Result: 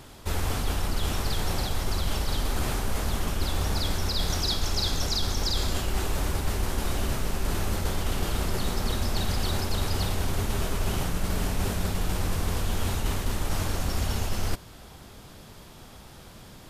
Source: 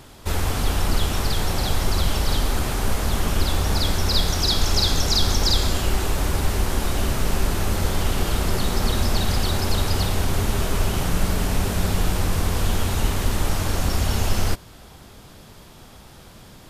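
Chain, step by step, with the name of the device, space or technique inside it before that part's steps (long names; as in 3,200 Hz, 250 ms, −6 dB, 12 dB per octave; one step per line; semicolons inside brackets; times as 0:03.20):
compression on the reversed sound (reversed playback; downward compressor, threshold −20 dBFS, peak gain reduction 7.5 dB; reversed playback)
level −2 dB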